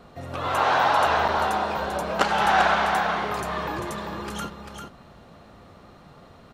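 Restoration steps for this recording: interpolate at 1.28 s, 5.7 ms; inverse comb 394 ms -6.5 dB

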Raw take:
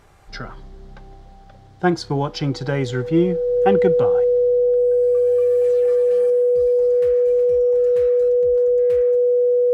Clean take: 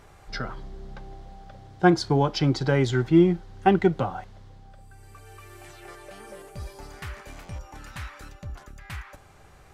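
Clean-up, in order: band-stop 490 Hz, Q 30; trim 0 dB, from 6.30 s +6.5 dB

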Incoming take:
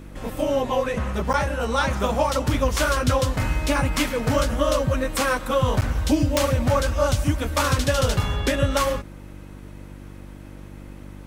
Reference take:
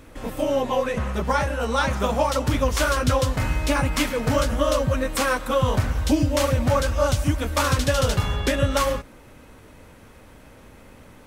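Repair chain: de-click; de-hum 48.8 Hz, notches 7; interpolate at 1.33/5.81 s, 9.2 ms

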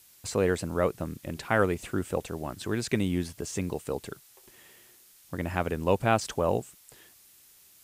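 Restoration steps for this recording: noise print and reduce 16 dB

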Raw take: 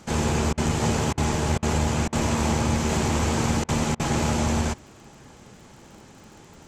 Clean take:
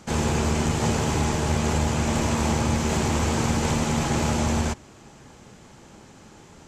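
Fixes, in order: de-click; interpolate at 0.53/1.13/1.58/2.08/3.64/3.95 s, 45 ms

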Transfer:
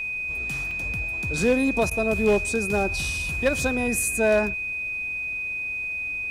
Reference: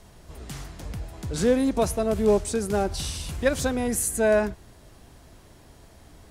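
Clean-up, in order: clip repair -13.5 dBFS; band-stop 2.5 kHz, Q 30; interpolate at 0.71 s, 2.8 ms; interpolate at 1.90 s, 11 ms

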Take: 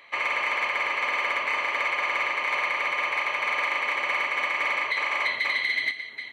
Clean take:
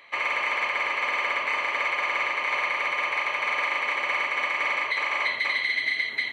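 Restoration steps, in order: clip repair -17 dBFS; trim 0 dB, from 5.91 s +9 dB

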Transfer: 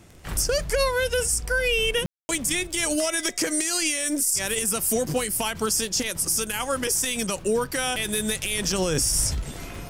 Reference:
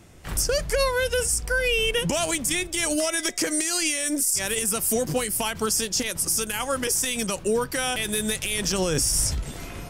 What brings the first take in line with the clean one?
de-click; room tone fill 2.06–2.29 s

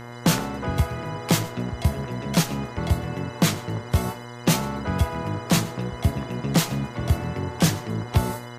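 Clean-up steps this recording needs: de-hum 119.9 Hz, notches 16; band-stop 2.1 kHz, Q 30; inverse comb 119 ms -20.5 dB

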